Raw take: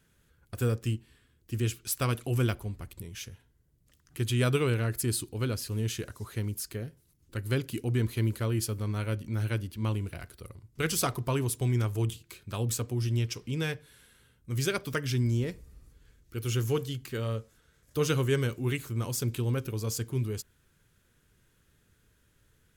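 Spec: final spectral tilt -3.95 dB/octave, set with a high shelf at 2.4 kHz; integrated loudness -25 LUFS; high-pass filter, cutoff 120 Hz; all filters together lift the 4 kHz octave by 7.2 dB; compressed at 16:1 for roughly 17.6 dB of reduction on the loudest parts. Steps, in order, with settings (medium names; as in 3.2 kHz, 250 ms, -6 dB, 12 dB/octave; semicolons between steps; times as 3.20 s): high-pass 120 Hz; treble shelf 2.4 kHz +6 dB; peaking EQ 4 kHz +4 dB; compression 16:1, threshold -39 dBFS; trim +19 dB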